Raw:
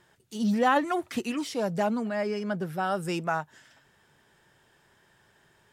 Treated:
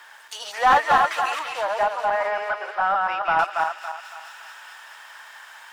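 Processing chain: regenerating reverse delay 0.14 s, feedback 52%, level -1.5 dB; inverse Chebyshev high-pass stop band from 170 Hz, stop band 70 dB; bell 3600 Hz -3 dB 1.9 oct; companded quantiser 6-bit; overdrive pedal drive 17 dB, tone 1400 Hz, clips at -10.5 dBFS; 1.39–3.39 air absorption 280 m; thin delay 0.219 s, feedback 69%, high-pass 3700 Hz, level -5 dB; mismatched tape noise reduction encoder only; gain +5 dB

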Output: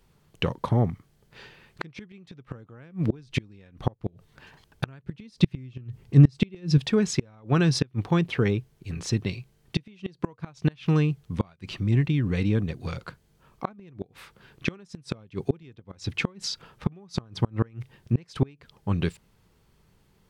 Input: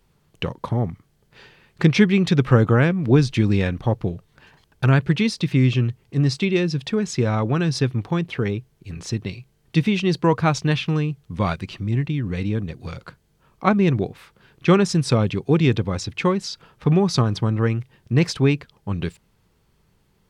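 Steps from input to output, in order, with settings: flipped gate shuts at -11 dBFS, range -31 dB; 5.04–6.78 low shelf 240 Hz +8.5 dB

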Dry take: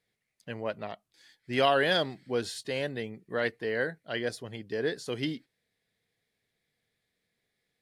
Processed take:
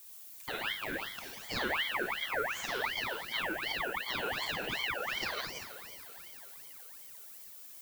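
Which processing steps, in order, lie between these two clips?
reverse delay 0.133 s, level -3 dB; HPF 440 Hz 24 dB/oct; treble ducked by the level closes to 760 Hz, closed at -26.5 dBFS; spectral repair 4.33–4.95, 680–2500 Hz both; compressor, threshold -42 dBFS, peak gain reduction 17.5 dB; on a send: diffused feedback echo 0.515 s, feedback 49%, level -15.5 dB; on the sum: added noise violet -59 dBFS; Schroeder reverb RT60 0.68 s, combs from 31 ms, DRR -0.5 dB; ring modulator with a swept carrier 1800 Hz, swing 50%, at 2.7 Hz; gain +8.5 dB

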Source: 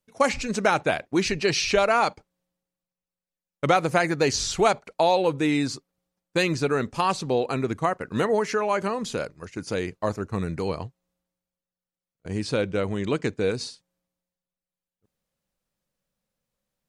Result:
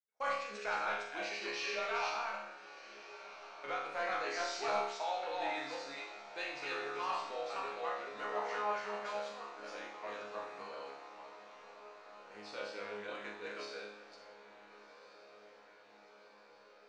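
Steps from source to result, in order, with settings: reverse delay 0.262 s, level -1 dB; gate -35 dBFS, range -19 dB; HPF 790 Hz 12 dB/oct; 2.05–3.94 compressor, threshold -20 dBFS, peak gain reduction 4 dB; soft clip -14 dBFS, distortion -19 dB; air absorption 140 m; resonator bank C#2 fifth, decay 0.79 s; diffused feedback echo 1.403 s, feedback 70%, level -15 dB; gain +4.5 dB

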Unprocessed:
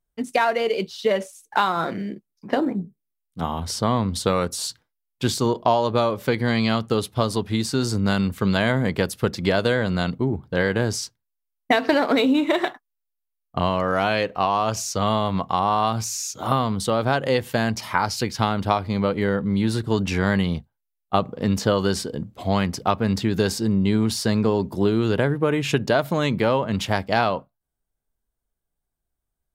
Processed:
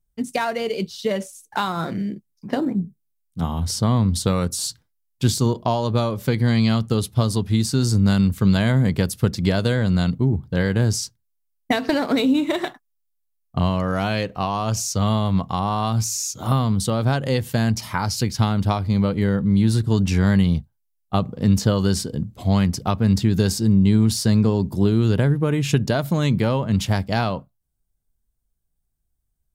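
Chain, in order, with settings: tone controls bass +12 dB, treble +8 dB; gain -4 dB

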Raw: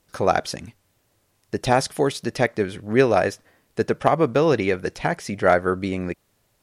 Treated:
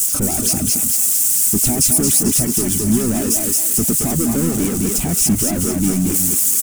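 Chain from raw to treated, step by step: switching spikes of -21.5 dBFS; limiter -15 dBFS, peak gain reduction 11 dB; bell 1600 Hz -15 dB 0.3 oct; echo 0.218 s -8 dB; sample leveller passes 5; reverb removal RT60 0.58 s; on a send: thinning echo 0.223 s, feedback 64%, high-pass 680 Hz, level -7 dB; on the sum: harmoniser -12 st -10 dB; graphic EQ 125/250/500/1000/2000/4000/8000 Hz -3/+8/-12/-9/-7/-12/+10 dB

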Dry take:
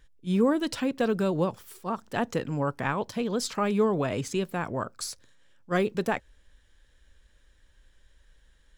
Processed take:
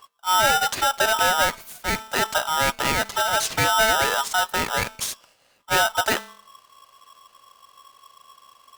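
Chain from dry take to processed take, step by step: added harmonics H 5 -15 dB, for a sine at -11.5 dBFS; de-hum 223.6 Hz, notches 20; polarity switched at an audio rate 1100 Hz; gain +2 dB

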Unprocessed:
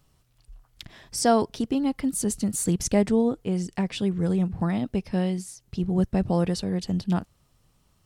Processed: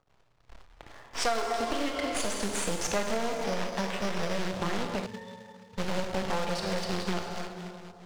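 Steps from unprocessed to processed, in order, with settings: 1.69–2.26 ripple EQ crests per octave 1.8, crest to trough 13 dB; half-wave rectifier; on a send at -3.5 dB: reverb RT60 2.8 s, pre-delay 21 ms; on the sum: low-pass opened by the level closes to 980 Hz, open at -25.5 dBFS; 3.44–4.36 careless resampling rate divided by 8×, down filtered, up hold; 5.06–5.78 octave resonator A, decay 0.1 s; harmonic-percussive split harmonic +6 dB; short-mantissa float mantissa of 2-bit; three-band isolator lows -13 dB, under 480 Hz, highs -14 dB, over 7300 Hz; compressor 6:1, threshold -31 dBFS, peak gain reduction 12.5 dB; Doppler distortion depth 0.14 ms; gain +5.5 dB

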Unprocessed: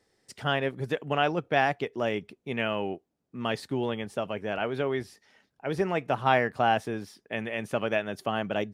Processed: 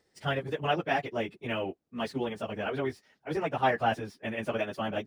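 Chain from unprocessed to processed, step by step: median filter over 3 samples; plain phase-vocoder stretch 0.58×; gain +1 dB

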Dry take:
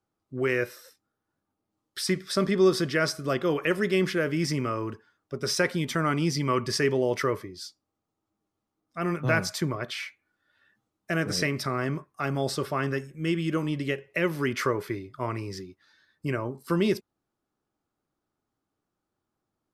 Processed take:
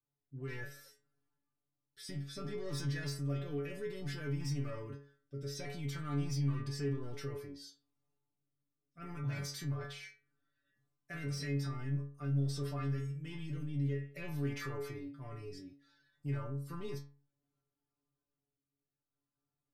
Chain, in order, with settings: transient shaper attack -3 dB, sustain +6 dB; rotary speaker horn 0.6 Hz; soft clip -21.5 dBFS, distortion -15 dB; low shelf 190 Hz +11.5 dB; metallic resonator 140 Hz, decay 0.44 s, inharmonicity 0.002; in parallel at +3 dB: limiter -36 dBFS, peak gain reduction 14 dB; on the sum: gain -6 dB

